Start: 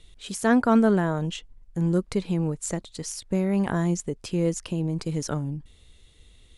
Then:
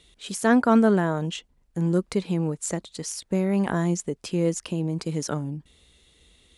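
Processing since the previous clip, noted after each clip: high-pass 65 Hz 12 dB/octave; peaking EQ 100 Hz -11.5 dB 0.59 oct; trim +1.5 dB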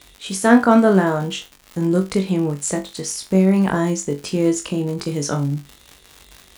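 crackle 110 per s -33 dBFS; on a send: flutter echo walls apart 3.6 m, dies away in 0.23 s; on the sum: trim +5 dB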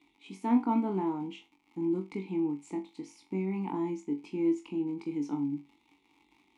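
vowel filter u; treble shelf 9 kHz +4.5 dB; trim -2 dB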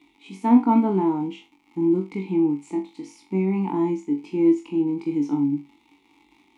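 harmonic-percussive split harmonic +8 dB; trim +2 dB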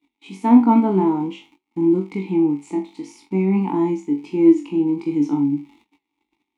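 gate -54 dBFS, range -24 dB; flange 0.53 Hz, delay 3.1 ms, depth 7.9 ms, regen +85%; trim +8 dB

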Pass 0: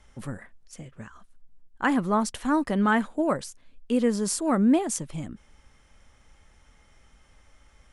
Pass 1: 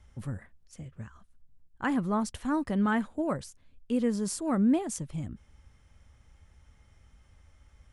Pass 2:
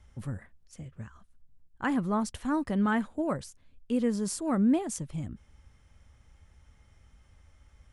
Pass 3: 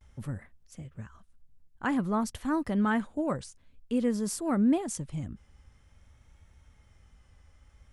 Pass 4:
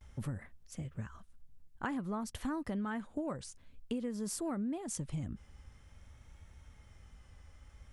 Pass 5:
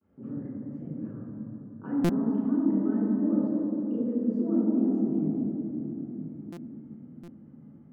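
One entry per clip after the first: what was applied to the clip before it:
peaking EQ 83 Hz +13.5 dB 1.8 oct; trim -7 dB
no audible change
vibrato 0.51 Hz 52 cents
compression 12:1, threshold -36 dBFS, peak gain reduction 16 dB; trim +2 dB
ladder band-pass 350 Hz, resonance 40%; reverberation RT60 3.5 s, pre-delay 3 ms, DRR -8.5 dB; buffer glitch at 2.04/6.52/7.23 s, samples 256, times 8; trim +1.5 dB

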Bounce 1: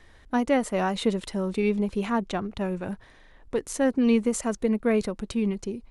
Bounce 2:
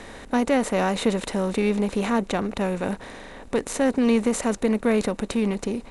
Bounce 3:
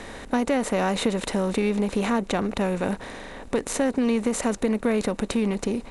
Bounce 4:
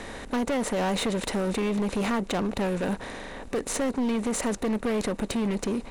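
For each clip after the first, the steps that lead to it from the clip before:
spectral levelling over time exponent 0.6
compression 3:1, threshold -22 dBFS, peak gain reduction 5.5 dB; trim +2 dB
overload inside the chain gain 23 dB

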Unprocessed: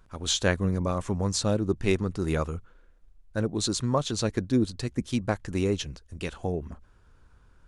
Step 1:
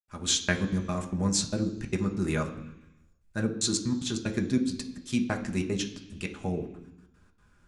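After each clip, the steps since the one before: trance gate ".xxxx.xx.x.xx" 187 bpm -60 dB; reverberation RT60 0.85 s, pre-delay 3 ms, DRR 3.5 dB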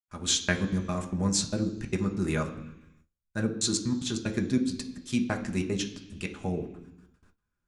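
gate with hold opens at -50 dBFS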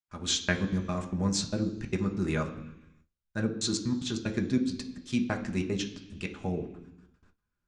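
low-pass 6.3 kHz 12 dB/octave; trim -1 dB

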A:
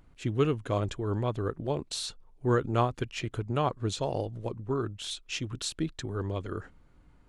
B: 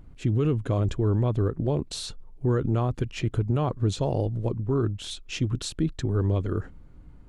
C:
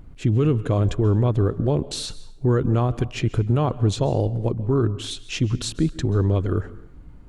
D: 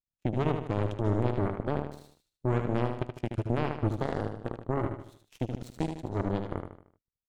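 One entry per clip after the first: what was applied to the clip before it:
bass shelf 460 Hz +11.5 dB; peak limiter -15.5 dBFS, peak gain reduction 9.5 dB
plate-style reverb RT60 0.66 s, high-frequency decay 0.8×, pre-delay 120 ms, DRR 17 dB; trim +4.5 dB
power-law waveshaper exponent 3; on a send: feedback delay 76 ms, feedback 44%, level -6.5 dB; on the sum: trim -3.5 dB

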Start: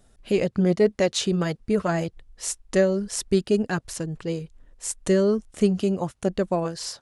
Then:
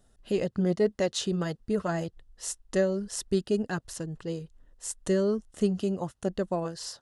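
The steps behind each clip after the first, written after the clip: band-stop 2.3 kHz, Q 5.7; trim -5.5 dB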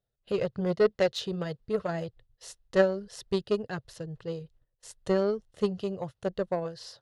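gate -51 dBFS, range -17 dB; ten-band graphic EQ 125 Hz +11 dB, 250 Hz -7 dB, 500 Hz +9 dB, 2 kHz +3 dB, 4 kHz +7 dB, 8 kHz -8 dB; Chebyshev shaper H 3 -14 dB, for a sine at -8.5 dBFS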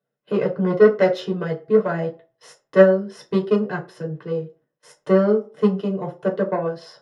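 reverberation RT60 0.40 s, pre-delay 3 ms, DRR -1 dB; trim -5.5 dB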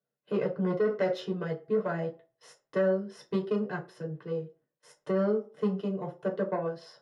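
peak limiter -10.5 dBFS, peak gain reduction 9 dB; trim -8 dB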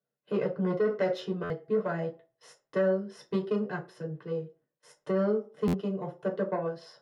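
buffer glitch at 1.43/5.67 s, samples 512, times 5

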